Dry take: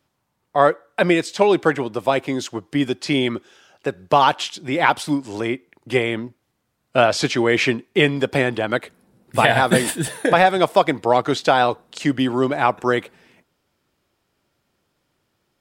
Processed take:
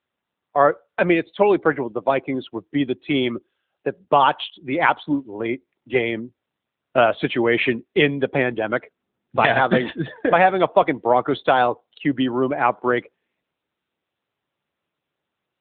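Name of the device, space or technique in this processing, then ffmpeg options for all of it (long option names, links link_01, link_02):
mobile call with aggressive noise cancelling: -af "highpass=frequency=150:poles=1,afftdn=noise_reduction=21:noise_floor=-31" -ar 8000 -c:a libopencore_amrnb -b:a 10200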